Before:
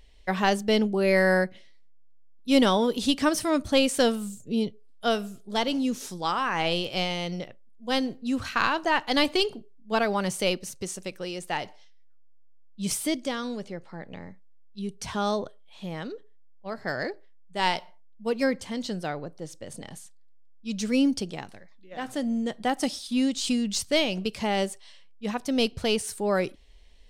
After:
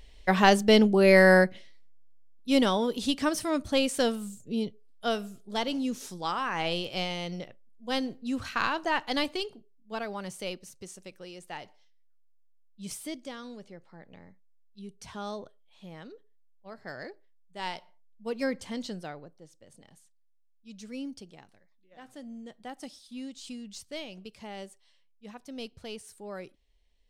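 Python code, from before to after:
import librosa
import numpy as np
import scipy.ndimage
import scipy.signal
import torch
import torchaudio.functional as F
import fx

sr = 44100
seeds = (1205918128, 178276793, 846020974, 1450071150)

y = fx.gain(x, sr, db=fx.line((1.39, 3.5), (2.72, -4.0), (9.07, -4.0), (9.49, -10.5), (17.75, -10.5), (18.75, -3.0), (19.51, -15.5)))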